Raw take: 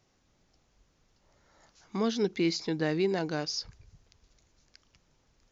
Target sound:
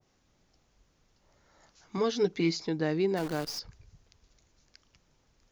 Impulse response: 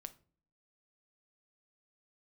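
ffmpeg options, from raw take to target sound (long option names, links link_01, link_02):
-filter_complex "[0:a]asettb=1/sr,asplit=3[link_01][link_02][link_03];[link_01]atrim=end=1.974[link_04];[link_02]atrim=start=1.97:end=2.6,asetpts=PTS-STARTPTS,afade=type=in:duration=0.004:curve=qsin,afade=type=out:start_time=0.626:duration=0.004:curve=qsin,aecho=1:1:6.9:0.62,atrim=end_sample=27783[link_05];[link_03]atrim=start=2.596[link_06];[link_04][link_05]acrossfade=duration=0.004:curve1=hsin:curve2=qsin[link_07];[link_07][link_06]acrossfade=duration=0.004:curve1=qsin:curve2=hsin,asplit=3[link_08][link_09][link_10];[link_08]afade=type=out:start_time=3.16:duration=0.02[link_11];[link_09]acrusher=bits=7:dc=4:mix=0:aa=0.000001,afade=type=in:start_time=3.16:duration=0.02,afade=type=out:start_time=3.58:duration=0.02[link_12];[link_10]afade=type=in:start_time=3.58:duration=0.02[link_13];[link_11][link_12][link_13]amix=inputs=3:normalize=0,adynamicequalizer=threshold=0.00501:dfrequency=1500:dqfactor=0.7:tfrequency=1500:tqfactor=0.7:attack=5:release=100:ratio=0.375:range=2:mode=cutabove:tftype=highshelf"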